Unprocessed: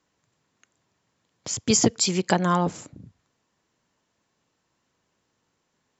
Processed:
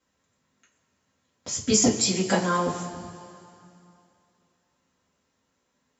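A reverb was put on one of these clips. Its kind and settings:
coupled-rooms reverb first 0.24 s, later 2.7 s, from −19 dB, DRR −6.5 dB
level −7.5 dB

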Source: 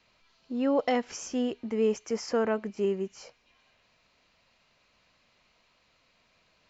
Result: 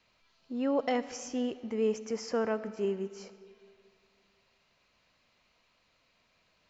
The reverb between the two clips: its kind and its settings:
comb and all-pass reverb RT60 2.2 s, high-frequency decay 0.65×, pre-delay 25 ms, DRR 14.5 dB
level −3.5 dB

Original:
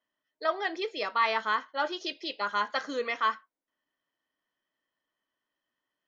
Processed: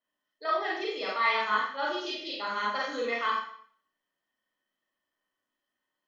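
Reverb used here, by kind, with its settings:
four-comb reverb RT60 0.55 s, combs from 30 ms, DRR −5.5 dB
level −6 dB

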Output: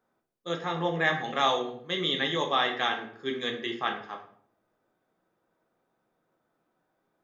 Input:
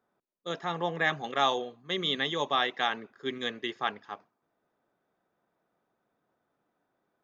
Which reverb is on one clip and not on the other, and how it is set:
rectangular room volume 81 cubic metres, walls mixed, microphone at 0.57 metres

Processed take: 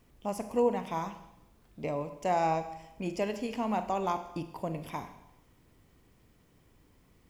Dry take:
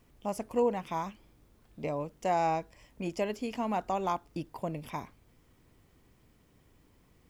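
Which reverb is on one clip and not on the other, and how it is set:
four-comb reverb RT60 0.87 s, combs from 33 ms, DRR 9 dB

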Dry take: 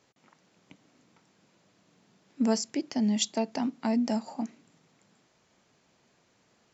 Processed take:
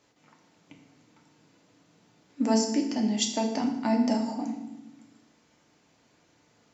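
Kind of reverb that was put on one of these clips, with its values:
feedback delay network reverb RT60 0.9 s, low-frequency decay 1.55×, high-frequency decay 0.85×, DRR 1.5 dB

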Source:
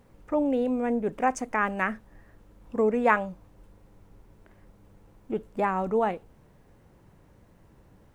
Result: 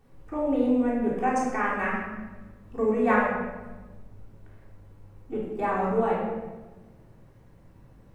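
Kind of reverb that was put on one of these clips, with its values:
rectangular room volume 830 cubic metres, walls mixed, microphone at 3.5 metres
level −7.5 dB

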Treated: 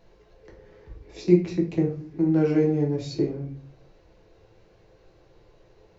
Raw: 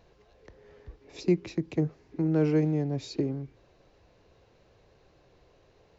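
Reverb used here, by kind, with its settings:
rectangular room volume 38 cubic metres, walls mixed, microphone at 0.69 metres
level −1.5 dB

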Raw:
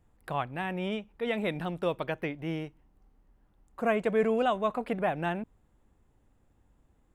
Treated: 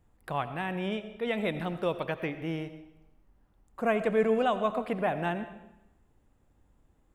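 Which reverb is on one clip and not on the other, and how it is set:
comb and all-pass reverb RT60 0.9 s, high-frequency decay 0.9×, pre-delay 45 ms, DRR 11 dB

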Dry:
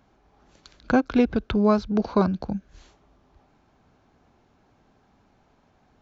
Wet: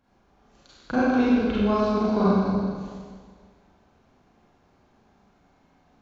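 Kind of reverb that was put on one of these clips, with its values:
four-comb reverb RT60 1.8 s, combs from 32 ms, DRR −9.5 dB
level −9 dB

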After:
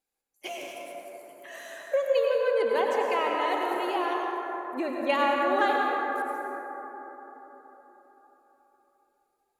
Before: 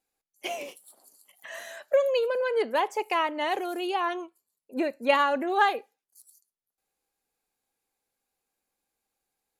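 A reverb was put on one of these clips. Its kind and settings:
dense smooth reverb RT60 4.3 s, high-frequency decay 0.3×, pre-delay 80 ms, DRR −2 dB
level −4 dB

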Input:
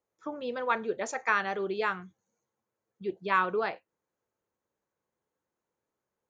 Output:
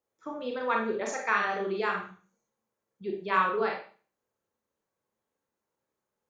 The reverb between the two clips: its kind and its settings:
four-comb reverb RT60 0.4 s, combs from 28 ms, DRR 0 dB
level −2 dB

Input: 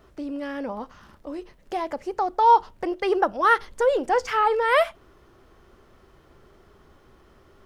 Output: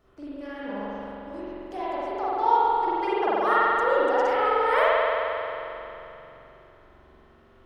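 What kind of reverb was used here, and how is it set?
spring reverb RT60 3.1 s, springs 44 ms, chirp 25 ms, DRR −10 dB
level −10.5 dB

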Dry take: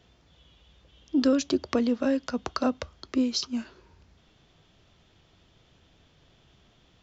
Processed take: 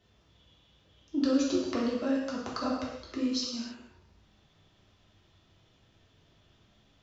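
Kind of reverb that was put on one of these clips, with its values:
reverb whose tail is shaped and stops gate 330 ms falling, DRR −5 dB
level −9.5 dB

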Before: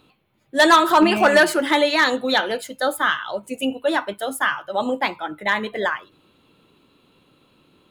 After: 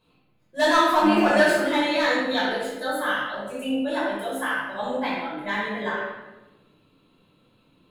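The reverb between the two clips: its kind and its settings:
rectangular room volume 550 cubic metres, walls mixed, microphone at 5.3 metres
level −16 dB

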